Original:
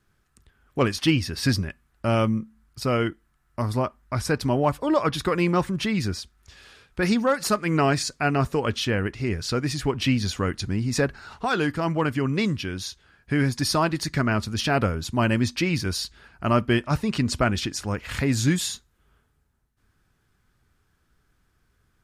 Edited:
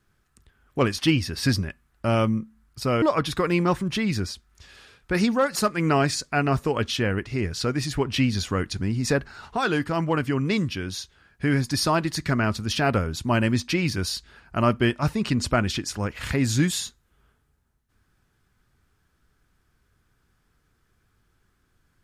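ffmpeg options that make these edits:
-filter_complex "[0:a]asplit=2[a][b];[a]atrim=end=3.022[c];[b]atrim=start=4.898[d];[c][d]acrossfade=d=0.004:c1=hsin:c2=hsin"

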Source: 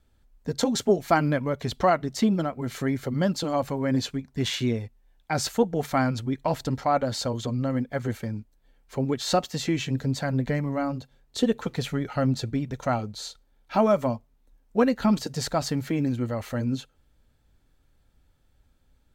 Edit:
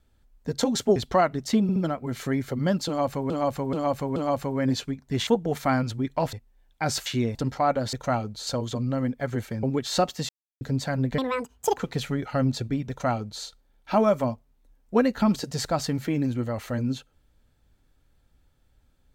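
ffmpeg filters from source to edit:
-filter_complex "[0:a]asplit=18[a][b][c][d][e][f][g][h][i][j][k][l][m][n][o][p][q][r];[a]atrim=end=0.962[s];[b]atrim=start=1.648:end=2.382[t];[c]atrim=start=2.308:end=2.382[u];[d]atrim=start=2.308:end=3.852[v];[e]atrim=start=3.418:end=3.852[w];[f]atrim=start=3.418:end=3.852[x];[g]atrim=start=3.418:end=4.532[y];[h]atrim=start=5.548:end=6.612[z];[i]atrim=start=4.818:end=5.552[aa];[j]atrim=start=4.528:end=4.822[ab];[k]atrim=start=6.608:end=7.192[ac];[l]atrim=start=12.718:end=13.262[ad];[m]atrim=start=7.188:end=8.352[ae];[n]atrim=start=8.978:end=9.64,asetpts=PTS-STARTPTS,afade=t=out:st=0.658:d=0.004:c=hsin[af];[o]atrim=start=9.64:end=9.96,asetpts=PTS-STARTPTS,volume=0[ag];[p]atrim=start=9.96:end=10.534,asetpts=PTS-STARTPTS,afade=t=in:d=0.004:c=hsin[ah];[q]atrim=start=10.53:end=11.6,asetpts=PTS-STARTPTS,asetrate=79380,aresample=44100[ai];[r]atrim=start=11.596[aj];[s][t]acrossfade=d=0.004:c1=hsin:c2=hsin[ak];[ak][u]acrossfade=d=0.004:c1=hsin:c2=hsin[al];[al][v]acrossfade=d=0.004:c1=hsin:c2=hsin[am];[am][w]acrossfade=d=0.004:c1=hsin:c2=hsin[an];[an][x]acrossfade=d=0.004:c1=hsin:c2=hsin[ao];[ao][y]acrossfade=d=0.004:c1=hsin:c2=hsin[ap];[ap][z]acrossfade=d=0.004:c1=hsin:c2=hsin[aq];[aq][aa]acrossfade=d=0.004:c1=hsin:c2=hsin[ar];[ar][ab]acrossfade=d=0.004:c1=hsin:c2=hsin[as];[as][ac]acrossfade=d=0.004:c1=hsin:c2=hsin[at];[at][ad]acrossfade=d=0.004:c1=hsin:c2=hsin[au];[au][ae]acrossfade=d=0.004:c1=hsin:c2=hsin[av];[af][ag][ah]concat=n=3:v=0:a=1[aw];[av][aw]acrossfade=d=0.004:c1=hsin:c2=hsin[ax];[ax][ai]acrossfade=d=0.004:c1=hsin:c2=hsin[ay];[ay][aj]acrossfade=d=0.004:c1=hsin:c2=hsin"

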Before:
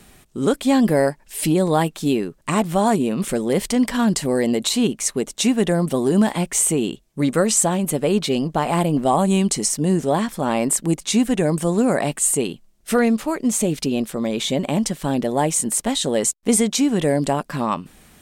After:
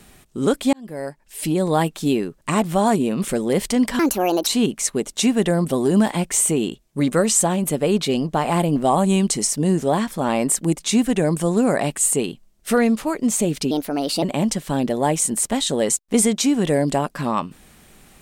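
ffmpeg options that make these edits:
-filter_complex "[0:a]asplit=6[a][b][c][d][e][f];[a]atrim=end=0.73,asetpts=PTS-STARTPTS,afade=t=out:st=0.726:d=0.004:c=hsin[g];[b]atrim=start=0.73:end=3.994,asetpts=PTS-STARTPTS,afade=t=in:d=1.11[h];[c]atrim=start=3.99:end=4.68,asetpts=PTS-STARTPTS,asetrate=63504,aresample=44100,atrim=end_sample=21131,asetpts=PTS-STARTPTS[i];[d]atrim=start=4.676:end=13.924[j];[e]atrim=start=13.92:end=14.57,asetpts=PTS-STARTPTS,asetrate=55566,aresample=44100[k];[f]atrim=start=14.566[l];[g][h]concat=n=2:v=0:a=1[m];[m][i]acrossfade=d=0.004:c1=hsin:c2=hsin[n];[n][j]acrossfade=d=0.004:c1=hsin:c2=hsin[o];[o][k]acrossfade=d=0.004:c1=hsin:c2=hsin[p];[p][l]acrossfade=d=0.004:c1=hsin:c2=hsin"

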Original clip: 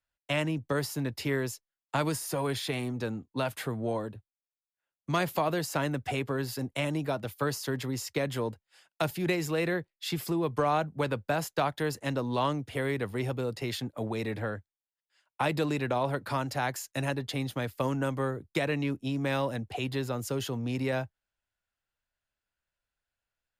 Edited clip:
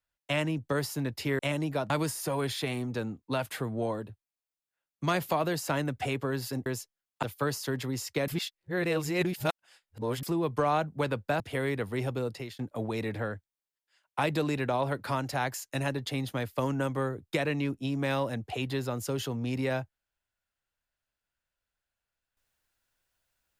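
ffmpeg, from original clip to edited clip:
-filter_complex "[0:a]asplit=9[a][b][c][d][e][f][g][h][i];[a]atrim=end=1.392[j];[b]atrim=start=6.718:end=7.232[k];[c]atrim=start=1.958:end=6.722[l];[d]atrim=start=1.388:end=1.962[m];[e]atrim=start=7.228:end=8.282[n];[f]atrim=start=8.278:end=10.232,asetpts=PTS-STARTPTS,areverse[o];[g]atrim=start=10.228:end=11.402[p];[h]atrim=start=12.618:end=13.81,asetpts=PTS-STARTPTS,afade=t=out:st=0.872:d=0.32:silence=0.0794328[q];[i]atrim=start=13.81,asetpts=PTS-STARTPTS,afade=t=in:d=0.004:c=hsin:silence=0.0794328[r];[j][k]acrossfade=d=0.004:c1=hsin:c2=hsin[s];[s][l]acrossfade=d=0.004:c1=hsin:c2=hsin[t];[t][m]acrossfade=d=0.004:c1=hsin:c2=hsin[u];[u][n]acrossfade=d=0.004:c1=hsin:c2=hsin[v];[v][o]acrossfade=d=0.004:c1=hsin:c2=hsin[w];[w][p]acrossfade=d=0.004:c1=hsin:c2=hsin[x];[q][r]concat=n=2:v=0:a=1[y];[x][y]acrossfade=d=0.004:c1=hsin:c2=hsin"

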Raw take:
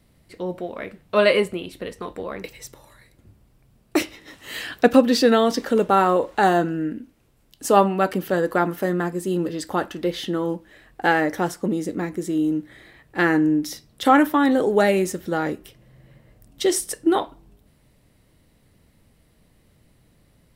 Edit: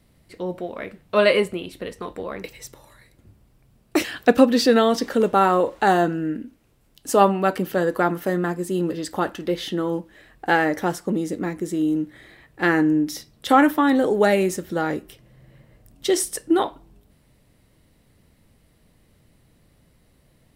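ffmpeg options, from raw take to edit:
-filter_complex "[0:a]asplit=2[a][b];[a]atrim=end=4.042[c];[b]atrim=start=4.598[d];[c][d]acrossfade=d=0.004:c1=hsin:c2=hsin"

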